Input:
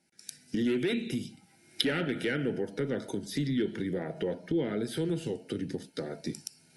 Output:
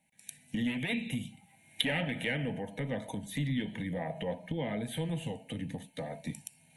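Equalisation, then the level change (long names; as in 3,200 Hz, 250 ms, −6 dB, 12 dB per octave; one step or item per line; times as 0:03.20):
dynamic equaliser 1,000 Hz, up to +3 dB, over −42 dBFS, Q 0.75
phaser with its sweep stopped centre 1,400 Hz, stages 6
+2.5 dB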